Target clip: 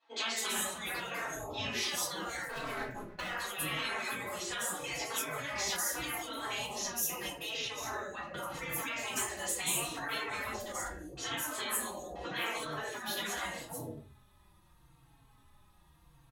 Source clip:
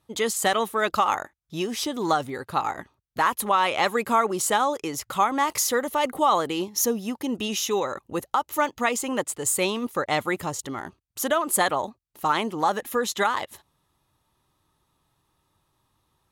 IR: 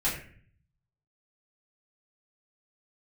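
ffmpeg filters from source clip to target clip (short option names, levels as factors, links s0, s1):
-filter_complex "[0:a]asplit=3[s0][s1][s2];[s0]afade=t=out:st=9.89:d=0.02[s3];[s1]lowshelf=f=260:g=11,afade=t=in:st=9.89:d=0.02,afade=t=out:st=10.5:d=0.02[s4];[s2]afade=t=in:st=10.5:d=0.02[s5];[s3][s4][s5]amix=inputs=3:normalize=0,acrossover=split=420|5300[s6][s7][s8];[s8]adelay=200[s9];[s6]adelay=410[s10];[s10][s7][s9]amix=inputs=3:normalize=0,asettb=1/sr,asplit=3[s11][s12][s13];[s11]atrim=end=2.494[s14];[s12]atrim=start=2.49:end=3.35,asetpts=PTS-STARTPTS,afade=t=in:d=0.004:c=qsin,afade=t=out:st=0.856:d=0.004:c=qsin,aeval=exprs='sgn(val(0))*max(abs(val(0))-0.0126,0)':c=same[s15];[s13]atrim=start=3.346[s16];[s14][s15]acrossfade=d=0.004:c1=hsin:c2=qsin[s17];[s17][s16]acrossfade=d=0.004:c1=qsin:c2=hsin,asettb=1/sr,asplit=3[s18][s19][s20];[s18]atrim=end=7.564[s21];[s19]atrim=start=7.56:end=8.37,asetpts=PTS-STARTPTS,afade=t=in:d=0.004:c=qsin,afade=t=out:st=0.806:d=0.004:c=qsin,highshelf=f=4100:g=-11.5[s22];[s20]atrim=start=8.366[s23];[s21][s22]acrossfade=d=0.004:c1=hsin:c2=qsin[s24];[s24][s23]acrossfade=d=0.004:c1=qsin:c2=hsin[s25];[1:a]atrim=start_sample=2205,afade=t=out:st=0.26:d=0.01,atrim=end_sample=11907[s26];[s25][s26]afir=irnorm=-1:irlink=0,acompressor=threshold=0.0794:ratio=6,afftfilt=real='re*lt(hypot(re,im),0.112)':imag='im*lt(hypot(re,im),0.112)':win_size=1024:overlap=0.75,asplit=2[s27][s28];[s28]adelay=3.9,afreqshift=-0.8[s29];[s27][s29]amix=inputs=2:normalize=1"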